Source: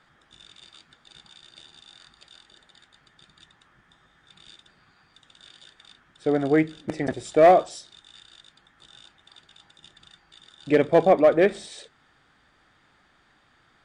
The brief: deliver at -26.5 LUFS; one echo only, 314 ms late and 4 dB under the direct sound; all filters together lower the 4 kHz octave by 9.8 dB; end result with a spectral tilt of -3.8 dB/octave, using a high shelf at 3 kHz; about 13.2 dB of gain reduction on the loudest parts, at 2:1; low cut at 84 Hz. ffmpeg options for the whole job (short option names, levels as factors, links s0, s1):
-af "highpass=84,highshelf=f=3000:g=-9,equalizer=f=4000:t=o:g=-5.5,acompressor=threshold=0.0141:ratio=2,aecho=1:1:314:0.631,volume=2"